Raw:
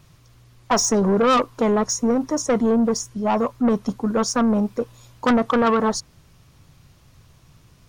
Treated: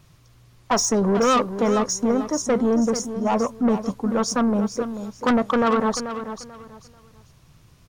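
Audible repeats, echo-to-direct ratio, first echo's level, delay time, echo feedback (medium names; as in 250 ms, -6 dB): 3, -10.0 dB, -10.5 dB, 438 ms, 25%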